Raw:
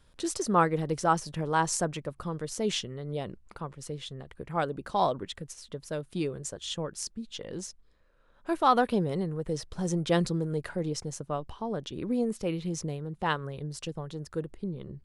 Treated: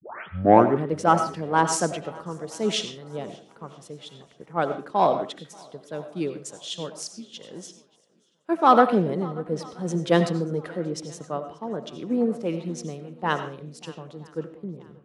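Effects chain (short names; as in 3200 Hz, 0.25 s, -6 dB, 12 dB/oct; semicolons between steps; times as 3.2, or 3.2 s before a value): tape start at the beginning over 0.85 s; in parallel at -10.5 dB: wavefolder -20 dBFS; on the sum: Chebyshev high-pass 200 Hz, order 2; high shelf 4500 Hz -7.5 dB; swung echo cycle 0.976 s, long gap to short 1.5:1, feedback 41%, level -17 dB; on a send at -8 dB: reverb RT60 0.40 s, pre-delay 55 ms; on the sum: three-band expander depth 70%; gain +2 dB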